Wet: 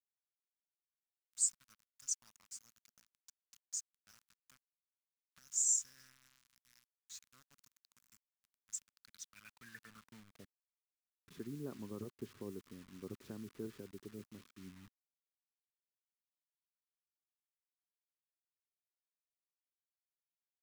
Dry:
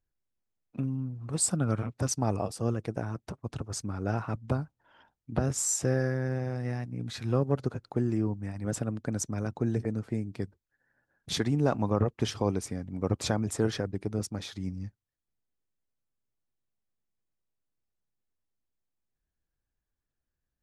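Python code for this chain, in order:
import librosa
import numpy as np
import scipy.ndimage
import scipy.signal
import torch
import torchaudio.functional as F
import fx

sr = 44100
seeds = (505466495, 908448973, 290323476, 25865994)

y = fx.filter_sweep_bandpass(x, sr, from_hz=6900.0, to_hz=380.0, start_s=8.8, end_s=10.71, q=5.9)
y = fx.quant_dither(y, sr, seeds[0], bits=10, dither='none')
y = fx.band_shelf(y, sr, hz=510.0, db=-13.5, octaves=1.7)
y = y * librosa.db_to_amplitude(1.5)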